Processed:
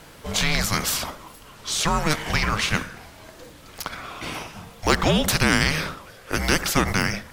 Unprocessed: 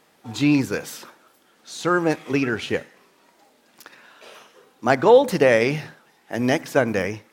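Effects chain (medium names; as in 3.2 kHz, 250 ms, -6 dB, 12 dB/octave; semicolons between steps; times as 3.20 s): frequency shift -310 Hz; spectrum-flattening compressor 2:1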